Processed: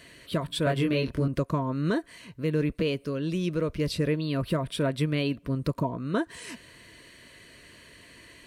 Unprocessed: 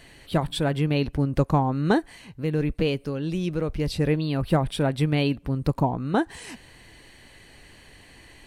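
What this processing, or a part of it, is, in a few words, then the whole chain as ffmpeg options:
PA system with an anti-feedback notch: -filter_complex "[0:a]highpass=f=130:p=1,asuperstop=centerf=800:order=12:qfactor=4.1,alimiter=limit=-16.5dB:level=0:latency=1:release=346,asettb=1/sr,asplit=3[a][b][c];[a]atrim=end=0.644[d];[b]atrim=start=0.64:end=1.28,asetpts=PTS-STARTPTS,afade=t=in:d=0.004:c=qsin,afade=t=out:st=0.636:d=0.004:c=qsin,asplit=2[e][f];[f]adelay=23,volume=-2dB[g];[e][g]amix=inputs=2:normalize=0,atrim=end_sample=28224[h];[c]atrim=start=1.276[i];[d][h]acrossfade=d=0.004:c1=hsin:c2=qsin[j];[j][i]acrossfade=d=0.004:c1=qsin:c2=hsin"

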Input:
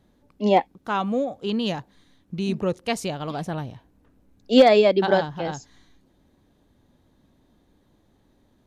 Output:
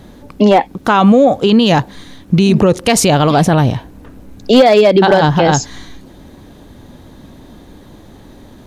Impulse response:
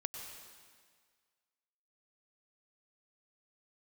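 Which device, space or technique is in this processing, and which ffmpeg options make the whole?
loud club master: -af "acompressor=threshold=-20dB:ratio=2.5,asoftclip=type=hard:threshold=-15.5dB,alimiter=level_in=24.5dB:limit=-1dB:release=50:level=0:latency=1,volume=-1dB"

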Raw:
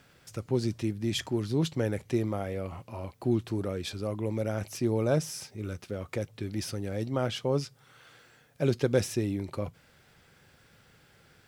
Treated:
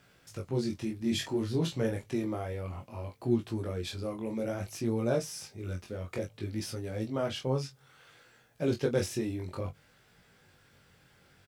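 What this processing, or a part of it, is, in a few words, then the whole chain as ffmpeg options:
double-tracked vocal: -filter_complex "[0:a]asettb=1/sr,asplit=3[a][b][c];[a]atrim=end=0.984[d];[b]atrim=start=0.98:end=1.91,asetpts=PTS-STARTPTS,afade=t=in:d=0.004:c=qsin,afade=t=out:st=0.926:d=0.004:c=qsin,asplit=2[e][f];[f]adelay=31,volume=-5.5dB[g];[e][g]amix=inputs=2:normalize=0,atrim=end_sample=41013[h];[c]atrim=start=1.906[i];[d][h]acrossfade=d=0.004:c1=hsin:c2=qsin[j];[j][i]acrossfade=d=0.004:c1=qsin:c2=hsin,asplit=2[k][l];[l]adelay=22,volume=-8dB[m];[k][m]amix=inputs=2:normalize=0,flanger=delay=17:depth=6.2:speed=0.59"

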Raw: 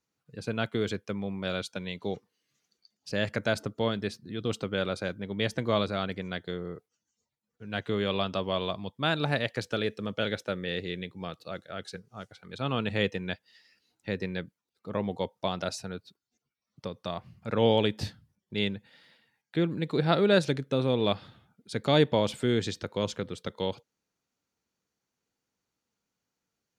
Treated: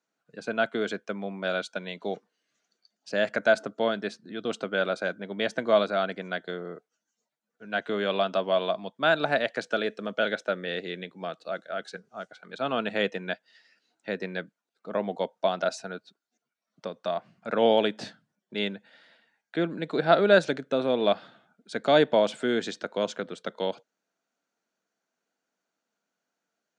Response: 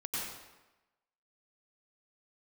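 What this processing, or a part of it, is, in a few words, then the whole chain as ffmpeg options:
television speaker: -af "highpass=f=190:w=0.5412,highpass=f=190:w=1.3066,equalizer=f=660:t=q:w=4:g=10,equalizer=f=1.5k:t=q:w=4:g=8,equalizer=f=5k:t=q:w=4:g=-3,lowpass=f=8.3k:w=0.5412,lowpass=f=8.3k:w=1.3066"

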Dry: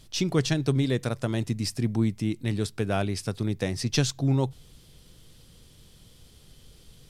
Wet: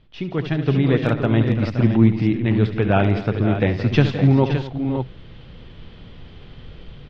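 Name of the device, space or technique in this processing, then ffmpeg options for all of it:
action camera in a waterproof case: -af "lowpass=f=2.9k:w=0.5412,lowpass=f=2.9k:w=1.3066,lowpass=f=8.5k:w=0.5412,lowpass=f=8.5k:w=1.3066,aecho=1:1:71|169|245|519|567:0.266|0.188|0.126|0.237|0.335,dynaudnorm=f=150:g=9:m=14.5dB,volume=-1.5dB" -ar 44100 -c:a aac -b:a 48k

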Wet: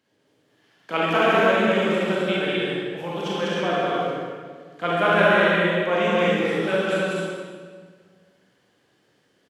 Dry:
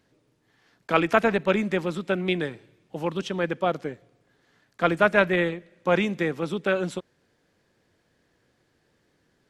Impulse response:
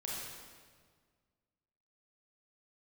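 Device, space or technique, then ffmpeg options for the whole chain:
stadium PA: -filter_complex "[0:a]highpass=67,highpass=f=200:p=1,equalizer=f=3k:t=o:w=0.2:g=6.5,aecho=1:1:157.4|198.3|262.4:0.316|0.794|0.631[a];[1:a]atrim=start_sample=2205[b];[a][b]afir=irnorm=-1:irlink=0"

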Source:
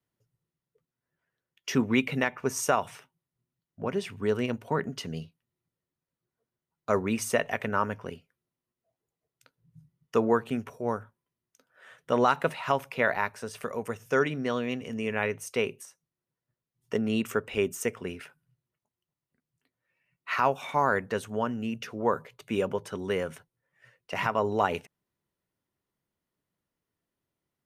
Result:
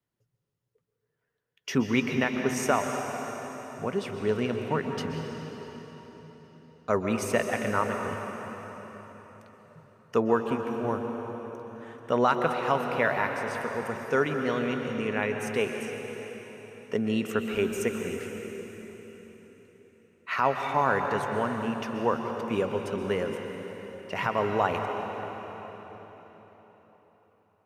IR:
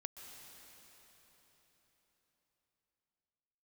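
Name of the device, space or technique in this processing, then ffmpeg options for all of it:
swimming-pool hall: -filter_complex "[1:a]atrim=start_sample=2205[a];[0:a][a]afir=irnorm=-1:irlink=0,highshelf=f=5k:g=-4.5,volume=5dB"

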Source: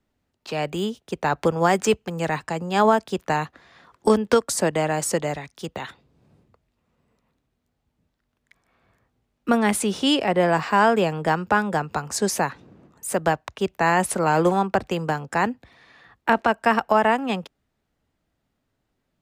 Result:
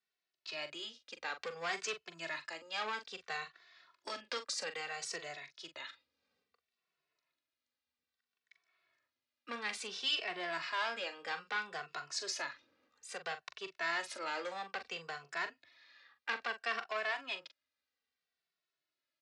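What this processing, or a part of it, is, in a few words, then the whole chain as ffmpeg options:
barber-pole flanger into a guitar amplifier: -filter_complex "[0:a]asplit=2[a][b];[b]adelay=2.2,afreqshift=-0.6[c];[a][c]amix=inputs=2:normalize=1,asoftclip=type=tanh:threshold=-17.5dB,highpass=76,equalizer=f=77:t=q:w=4:g=8,equalizer=f=110:t=q:w=4:g=-8,equalizer=f=200:t=q:w=4:g=-8,equalizer=f=860:t=q:w=4:g=-7,equalizer=f=3.2k:t=q:w=4:g=-4,lowpass=f=4.6k:w=0.5412,lowpass=f=4.6k:w=1.3066,aderivative,asplit=2[d][e];[e]adelay=42,volume=-10.5dB[f];[d][f]amix=inputs=2:normalize=0,volume=5.5dB"

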